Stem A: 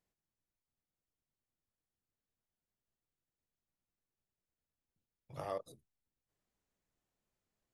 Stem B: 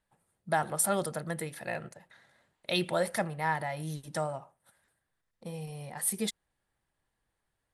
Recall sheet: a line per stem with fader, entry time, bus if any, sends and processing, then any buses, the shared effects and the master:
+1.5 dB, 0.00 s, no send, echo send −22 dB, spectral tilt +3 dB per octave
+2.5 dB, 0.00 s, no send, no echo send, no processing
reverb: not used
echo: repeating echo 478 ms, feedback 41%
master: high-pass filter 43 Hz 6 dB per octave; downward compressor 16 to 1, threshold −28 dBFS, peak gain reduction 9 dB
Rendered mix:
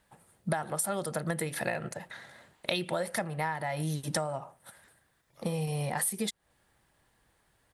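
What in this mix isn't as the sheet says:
stem A +1.5 dB → −10.5 dB
stem B +2.5 dB → +13.0 dB

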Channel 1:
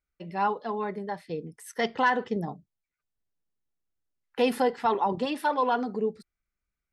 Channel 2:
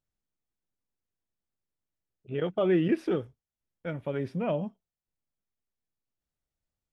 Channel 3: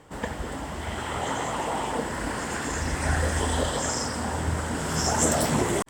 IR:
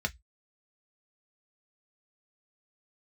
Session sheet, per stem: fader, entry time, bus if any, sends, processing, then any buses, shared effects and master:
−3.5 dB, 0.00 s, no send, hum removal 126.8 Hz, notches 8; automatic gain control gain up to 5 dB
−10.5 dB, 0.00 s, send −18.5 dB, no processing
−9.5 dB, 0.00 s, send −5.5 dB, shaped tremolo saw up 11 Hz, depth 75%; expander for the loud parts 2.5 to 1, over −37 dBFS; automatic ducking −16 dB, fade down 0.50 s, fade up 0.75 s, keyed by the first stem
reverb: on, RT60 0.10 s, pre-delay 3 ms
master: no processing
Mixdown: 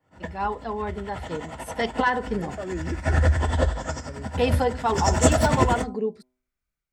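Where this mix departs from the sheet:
stem 3 −9.5 dB → +1.5 dB
reverb return +9.0 dB

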